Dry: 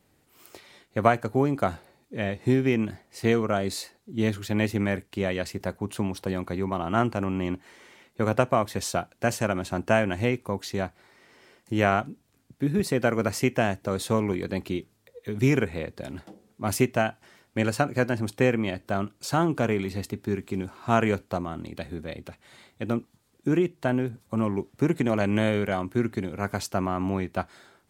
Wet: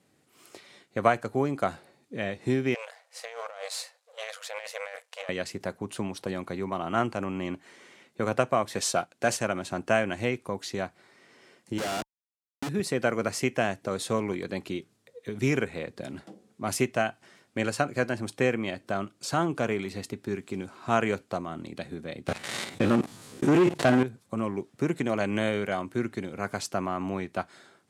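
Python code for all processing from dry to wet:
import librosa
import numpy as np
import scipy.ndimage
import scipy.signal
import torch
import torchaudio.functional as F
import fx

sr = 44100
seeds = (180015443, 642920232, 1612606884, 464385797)

y = fx.chain(x, sr, fx.halfwave_gain(db=-12.0),
    fx.brickwall_highpass(low_hz=460.0),
    fx.over_compress(threshold_db=-37.0, ratio=-1.0), at=(2.74, 5.29))
y = fx.chain(y, sr, fx.low_shelf(hz=180.0, db=-5.5),
    fx.leveller(passes=1), at=(8.72, 9.37))
y = fx.chain(y, sr, fx.highpass(hz=210.0, slope=6),
    fx.schmitt(flips_db=-31.0),
    fx.resample_bad(factor=2, down='filtered', up='zero_stuff'), at=(11.78, 12.69))
y = fx.chain(y, sr, fx.spec_steps(hold_ms=50),
    fx.leveller(passes=3),
    fx.env_flatten(amount_pct=50), at=(22.28, 24.03))
y = scipy.signal.sosfilt(scipy.signal.cheby1(2, 1.0, [150.0, 9500.0], 'bandpass', fs=sr, output='sos'), y)
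y = fx.notch(y, sr, hz=890.0, q=17.0)
y = fx.dynamic_eq(y, sr, hz=200.0, q=0.71, threshold_db=-36.0, ratio=4.0, max_db=-5)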